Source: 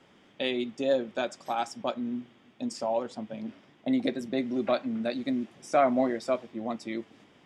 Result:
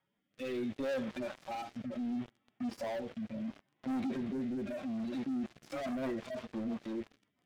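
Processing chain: median-filter separation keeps harmonic; LPF 1700 Hz 6 dB/oct; bell 290 Hz -9.5 dB 2.4 oct; sample leveller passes 5; limiter -31.5 dBFS, peak gain reduction 11 dB; rotary speaker horn 0.7 Hz, later 6 Hz, at 4.91

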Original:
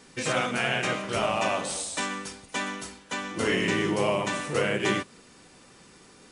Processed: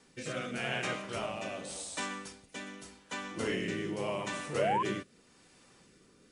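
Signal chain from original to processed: rotary speaker horn 0.85 Hz; painted sound rise, 4.58–4.83, 530–1100 Hz -23 dBFS; gain -6.5 dB

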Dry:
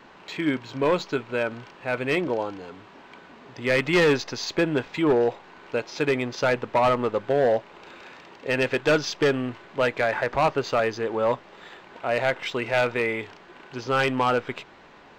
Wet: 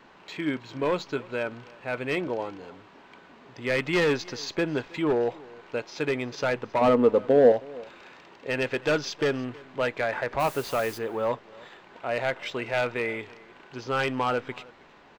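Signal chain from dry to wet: 6.81–7.52 small resonant body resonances 260/460 Hz, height 12 dB, ringing for 35 ms; 10.39–10.97 added noise white -40 dBFS; echo 0.318 s -22.5 dB; gain -4 dB

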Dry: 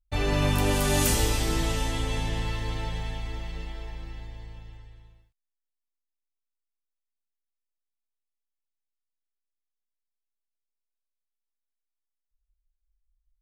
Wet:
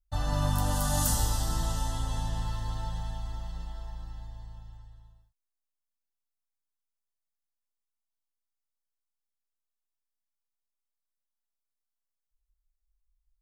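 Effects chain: fixed phaser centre 960 Hz, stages 4; gain -1.5 dB

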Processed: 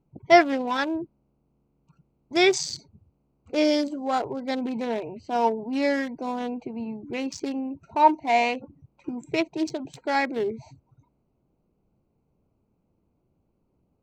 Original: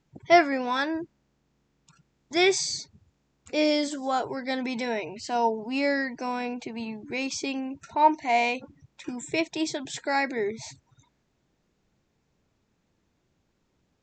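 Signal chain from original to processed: Wiener smoothing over 25 samples; gain +2.5 dB

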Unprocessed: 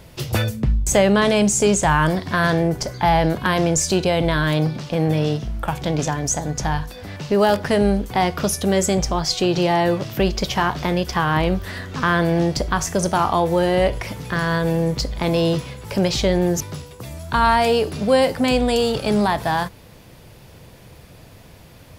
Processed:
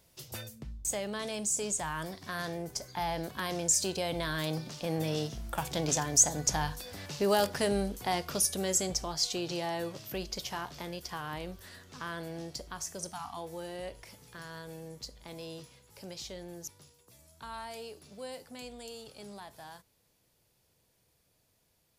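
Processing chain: Doppler pass-by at 6.41, 7 m/s, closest 10 m; tone controls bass -4 dB, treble +11 dB; spectral delete 13.13–13.37, 320–670 Hz; gain -8.5 dB

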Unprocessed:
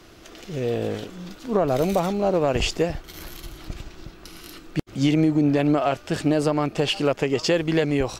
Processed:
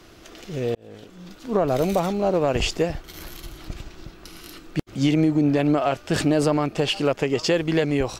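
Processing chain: 0.75–1.58 fade in; 6.1–6.57 fast leveller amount 50%

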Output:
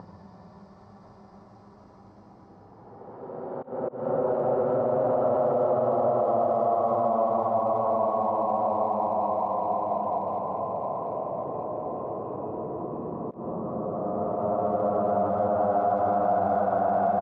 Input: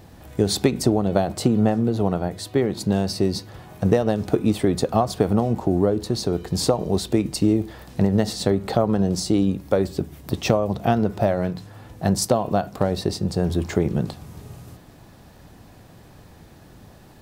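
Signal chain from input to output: Paulstretch 44×, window 0.10 s, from 12.2; low shelf 410 Hz -8.5 dB; limiter -15.5 dBFS, peak gain reduction 8 dB; auto swell 0.218 s; tilt +2.5 dB/oct; upward compressor, threshold -28 dBFS; LPF 1100 Hz 24 dB/oct; speakerphone echo 0.21 s, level -24 dB; gain +2 dB

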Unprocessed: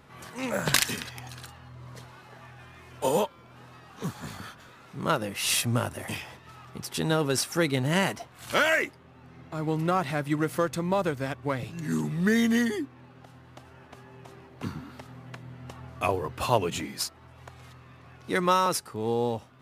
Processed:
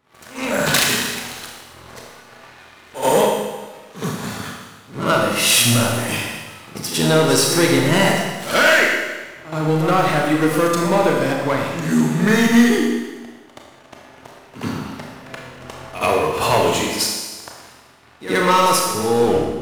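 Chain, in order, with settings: tape stop at the end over 0.38 s; AGC gain up to 3.5 dB; sample leveller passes 3; low shelf 140 Hz -8.5 dB; pre-echo 76 ms -12.5 dB; Schroeder reverb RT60 1.3 s, combs from 26 ms, DRR -0.5 dB; gain -4.5 dB

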